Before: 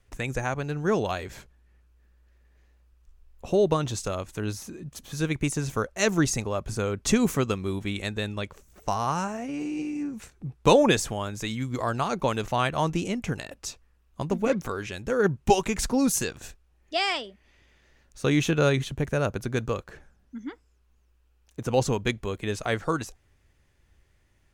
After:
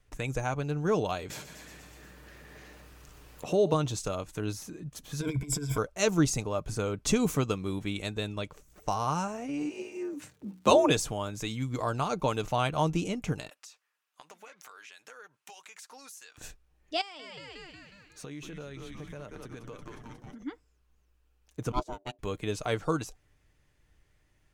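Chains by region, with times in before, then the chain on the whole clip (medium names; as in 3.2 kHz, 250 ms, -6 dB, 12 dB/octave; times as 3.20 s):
1.30–3.74 s: high-pass 130 Hz + frequency-shifting echo 120 ms, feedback 63%, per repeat +41 Hz, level -17 dB + upward compressor, threshold -27 dBFS
5.21–5.78 s: hard clipper -21.5 dBFS + rippled EQ curve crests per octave 1.7, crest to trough 17 dB + compressor with a negative ratio -29 dBFS, ratio -0.5
9.69–10.89 s: hum notches 60/120/180/240/300/360/420 Hz + crackle 200 per s -52 dBFS + frequency shift +65 Hz
13.49–16.38 s: high-pass 1.1 kHz + compression 8:1, threshold -43 dBFS
17.01–20.43 s: high-pass 120 Hz + frequency-shifting echo 181 ms, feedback 59%, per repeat -120 Hz, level -9 dB + compression 10:1, threshold -37 dBFS
21.72–22.19 s: ring modulator 490 Hz + upward expansion 2.5:1, over -36 dBFS
whole clip: comb 6.6 ms, depth 31%; dynamic bell 1.8 kHz, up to -7 dB, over -49 dBFS, Q 3.5; trim -3 dB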